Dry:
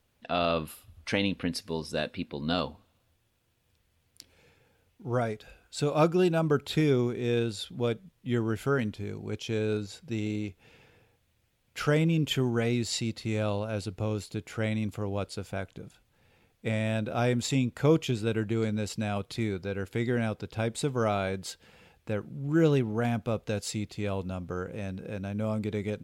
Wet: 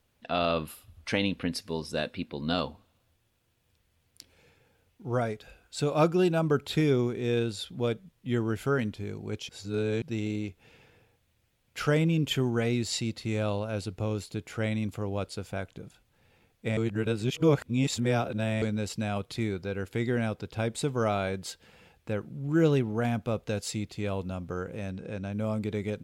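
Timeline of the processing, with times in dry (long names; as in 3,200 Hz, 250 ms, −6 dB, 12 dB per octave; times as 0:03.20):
0:09.49–0:10.02: reverse
0:16.77–0:18.62: reverse
0:24.91–0:25.33: low-pass filter 9,100 Hz 24 dB per octave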